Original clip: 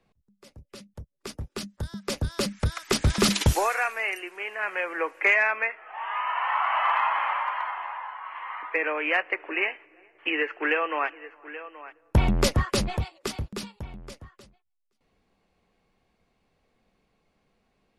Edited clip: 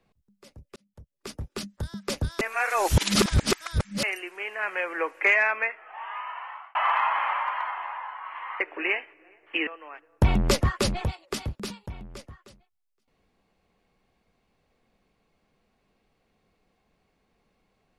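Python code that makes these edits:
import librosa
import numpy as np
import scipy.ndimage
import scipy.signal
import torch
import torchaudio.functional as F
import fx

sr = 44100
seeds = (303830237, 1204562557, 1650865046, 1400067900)

y = fx.edit(x, sr, fx.fade_in_span(start_s=0.76, length_s=0.58),
    fx.reverse_span(start_s=2.41, length_s=1.62),
    fx.fade_out_span(start_s=5.63, length_s=1.12),
    fx.cut(start_s=8.6, length_s=0.72),
    fx.cut(start_s=10.39, length_s=1.21), tone=tone)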